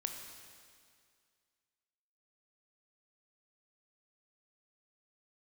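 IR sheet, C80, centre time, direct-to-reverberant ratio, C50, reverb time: 6.0 dB, 51 ms, 3.5 dB, 5.0 dB, 2.1 s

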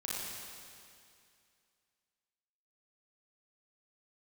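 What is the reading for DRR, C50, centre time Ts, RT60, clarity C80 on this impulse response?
-6.5 dB, -4.0 dB, 159 ms, 2.4 s, -1.5 dB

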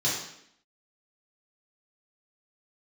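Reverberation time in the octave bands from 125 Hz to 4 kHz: 0.65 s, 0.85 s, 0.75 s, 0.70 s, 0.70 s, 0.70 s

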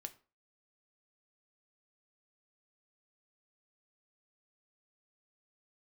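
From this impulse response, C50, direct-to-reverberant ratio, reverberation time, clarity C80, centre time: 17.5 dB, 8.0 dB, 0.35 s, 22.5 dB, 5 ms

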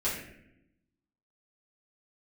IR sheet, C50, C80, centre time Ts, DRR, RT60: 3.5 dB, 6.0 dB, 47 ms, -10.5 dB, 0.80 s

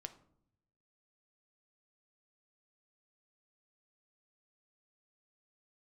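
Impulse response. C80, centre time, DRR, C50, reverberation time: 17.5 dB, 6 ms, 8.0 dB, 14.0 dB, 0.70 s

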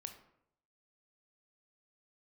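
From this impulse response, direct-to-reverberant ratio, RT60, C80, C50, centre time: 6.5 dB, 0.75 s, 12.5 dB, 9.5 dB, 13 ms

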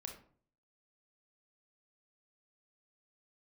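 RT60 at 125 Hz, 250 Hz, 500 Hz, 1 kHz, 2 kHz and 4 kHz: 0.70 s, 0.60 s, 0.55 s, 0.45 s, 0.35 s, 0.30 s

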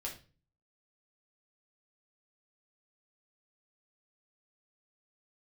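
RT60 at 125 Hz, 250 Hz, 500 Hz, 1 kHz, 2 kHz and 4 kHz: 0.65 s, 0.55 s, 0.40 s, 0.35 s, 0.35 s, 0.35 s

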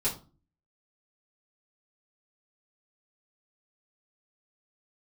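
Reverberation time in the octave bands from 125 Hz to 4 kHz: 0.60 s, 0.55 s, 0.35 s, 0.35 s, 0.25 s, 0.25 s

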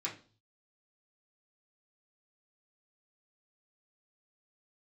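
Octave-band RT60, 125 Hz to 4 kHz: 0.80 s, 0.45 s, 0.40 s, 0.35 s, 0.30 s, 0.40 s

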